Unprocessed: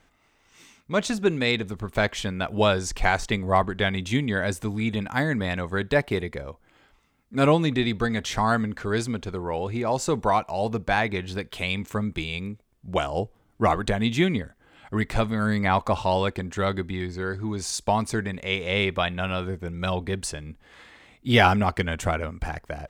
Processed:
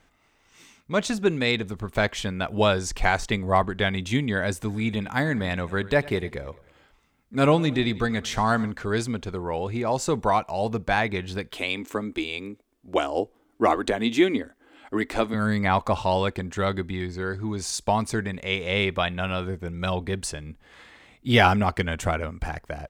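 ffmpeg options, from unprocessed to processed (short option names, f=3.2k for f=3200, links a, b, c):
-filter_complex "[0:a]asplit=3[a][b][c];[a]afade=t=out:st=4.68:d=0.02[d];[b]aecho=1:1:100|200|300|400:0.1|0.052|0.027|0.0141,afade=t=in:st=4.68:d=0.02,afade=t=out:st=8.7:d=0.02[e];[c]afade=t=in:st=8.7:d=0.02[f];[d][e][f]amix=inputs=3:normalize=0,asettb=1/sr,asplit=3[g][h][i];[g]atrim=end=11.544[j];[h]atrim=start=11.54:end=15.34,asetpts=PTS-STARTPTS,afade=t=in:d=0.004:c=qsin,afade=t=out:st=3.796:d=0.004:c=qsin,lowshelf=f=210:t=q:w=3:g=-9.5[k];[i]atrim=start=15.336[l];[j][k]acrossfade=d=0.004:c1=hsin:c2=qsin[m];[m][l]acrossfade=d=0.004:c1=qsin:c2=hsin"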